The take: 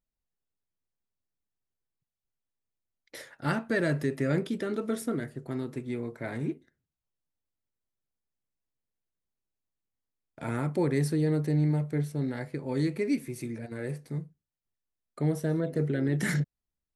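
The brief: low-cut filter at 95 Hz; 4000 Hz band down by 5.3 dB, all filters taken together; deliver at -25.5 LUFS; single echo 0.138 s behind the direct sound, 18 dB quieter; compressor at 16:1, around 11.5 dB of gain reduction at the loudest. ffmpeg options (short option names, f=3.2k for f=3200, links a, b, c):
-af "highpass=95,equalizer=f=4k:t=o:g=-6.5,acompressor=threshold=-34dB:ratio=16,aecho=1:1:138:0.126,volume=14.5dB"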